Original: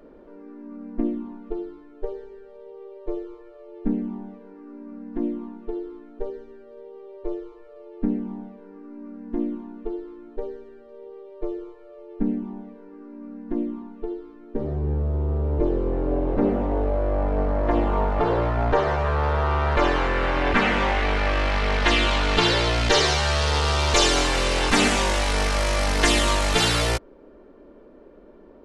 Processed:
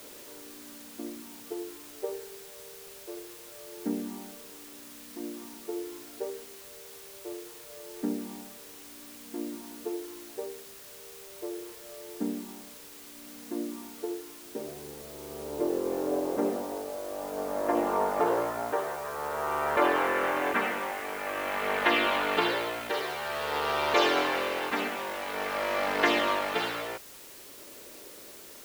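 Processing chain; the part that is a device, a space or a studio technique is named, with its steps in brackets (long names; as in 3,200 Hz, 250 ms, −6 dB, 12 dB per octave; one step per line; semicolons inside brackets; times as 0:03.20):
shortwave radio (band-pass filter 320–2,500 Hz; amplitude tremolo 0.5 Hz, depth 64%; white noise bed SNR 16 dB)
level −1.5 dB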